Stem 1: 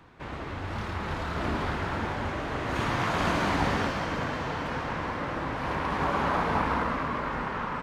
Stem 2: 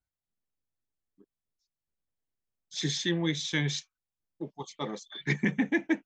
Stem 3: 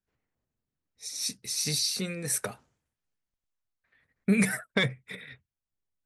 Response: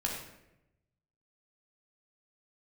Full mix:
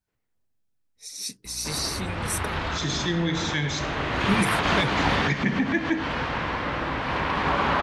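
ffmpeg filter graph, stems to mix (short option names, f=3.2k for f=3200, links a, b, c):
-filter_complex "[0:a]highshelf=f=7.6k:g=-10.5,aeval=exprs='val(0)+0.00501*(sin(2*PI*60*n/s)+sin(2*PI*2*60*n/s)/2+sin(2*PI*3*60*n/s)/3+sin(2*PI*4*60*n/s)/4+sin(2*PI*5*60*n/s)/5)':c=same,adynamicequalizer=threshold=0.00398:dfrequency=3400:dqfactor=0.71:tfrequency=3400:tqfactor=0.71:attack=5:release=100:ratio=0.375:range=4:mode=boostabove:tftype=bell,adelay=1450,volume=2.5dB[a];[1:a]volume=-2dB,asplit=3[b][c][d];[c]volume=-4dB[e];[2:a]volume=-1dB[f];[d]apad=whole_len=408920[g];[a][g]sidechaincompress=threshold=-37dB:ratio=8:attack=10:release=116[h];[3:a]atrim=start_sample=2205[i];[e][i]afir=irnorm=-1:irlink=0[j];[h][b][f][j]amix=inputs=4:normalize=0"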